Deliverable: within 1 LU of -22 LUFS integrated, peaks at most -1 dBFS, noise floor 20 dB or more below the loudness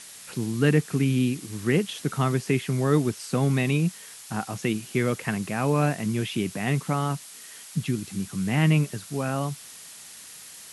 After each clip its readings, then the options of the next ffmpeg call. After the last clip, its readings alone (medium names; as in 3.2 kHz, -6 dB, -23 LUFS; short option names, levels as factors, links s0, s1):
noise floor -45 dBFS; noise floor target -46 dBFS; loudness -26.0 LUFS; peak level -8.0 dBFS; loudness target -22.0 LUFS
-> -af "afftdn=nr=6:nf=-45"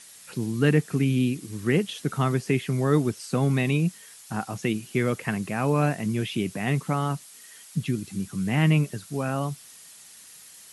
noise floor -48 dBFS; loudness -26.0 LUFS; peak level -8.5 dBFS; loudness target -22.0 LUFS
-> -af "volume=1.58"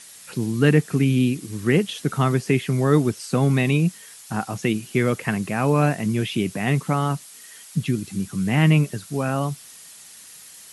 loudness -22.0 LUFS; peak level -4.5 dBFS; noise floor -44 dBFS